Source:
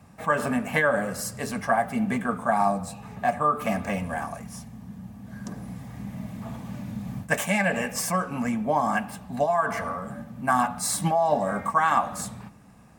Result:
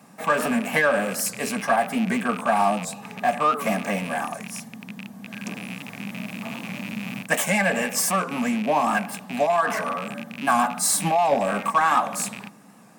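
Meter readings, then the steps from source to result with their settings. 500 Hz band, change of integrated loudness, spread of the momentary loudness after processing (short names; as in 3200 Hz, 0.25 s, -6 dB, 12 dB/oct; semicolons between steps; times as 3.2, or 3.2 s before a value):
+2.5 dB, +2.5 dB, 14 LU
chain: rattling part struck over -37 dBFS, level -28 dBFS; HPF 180 Hz 24 dB/oct; high shelf 6000 Hz +5 dB; in parallel at -4 dB: soft clip -25 dBFS, distortion -8 dB; on the sum: record warp 78 rpm, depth 100 cents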